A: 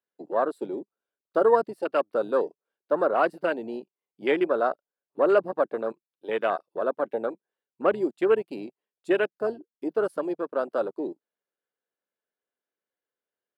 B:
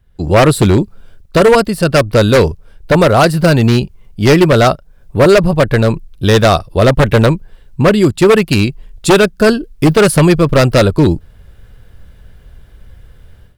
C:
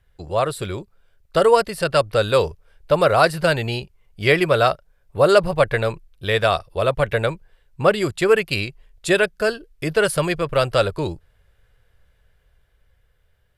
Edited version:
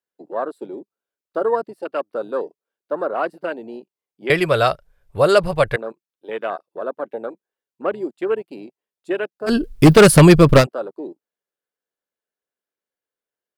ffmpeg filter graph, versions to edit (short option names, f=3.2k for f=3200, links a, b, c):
-filter_complex "[0:a]asplit=3[a][b][c];[a]atrim=end=4.302[d];[2:a]atrim=start=4.298:end=5.762[e];[b]atrim=start=5.758:end=9.56[f];[1:a]atrim=start=9.46:end=10.67[g];[c]atrim=start=10.57[h];[d][e]acrossfade=d=0.004:c1=hsin:c2=hsin[i];[i][f]acrossfade=d=0.004:c1=hsin:c2=hsin[j];[j][g]acrossfade=d=0.1:c1=tri:c2=tri[k];[k][h]acrossfade=d=0.1:c1=tri:c2=tri"